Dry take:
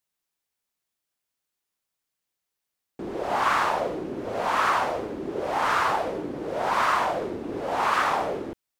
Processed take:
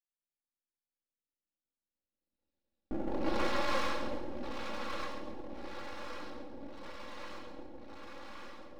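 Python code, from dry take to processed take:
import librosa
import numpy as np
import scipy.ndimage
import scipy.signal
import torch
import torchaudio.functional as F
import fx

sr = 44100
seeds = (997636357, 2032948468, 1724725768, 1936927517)

p1 = fx.wiener(x, sr, points=41)
p2 = fx.doppler_pass(p1, sr, speed_mps=13, closest_m=1.8, pass_at_s=2.51)
p3 = scipy.signal.sosfilt(scipy.signal.cheby1(6, 6, 5600.0, 'lowpass', fs=sr, output='sos'), p2)
p4 = fx.band_shelf(p3, sr, hz=1100.0, db=-11.5, octaves=1.7)
p5 = fx.rev_gated(p4, sr, seeds[0], gate_ms=400, shape='rising', drr_db=-3.0)
p6 = np.maximum(p5, 0.0)
p7 = p6 + 0.81 * np.pad(p6, (int(3.6 * sr / 1000.0), 0))[:len(p6)]
p8 = p7 + fx.echo_feedback(p7, sr, ms=137, feedback_pct=41, wet_db=-11.0, dry=0)
y = p8 * librosa.db_to_amplitude(17.0)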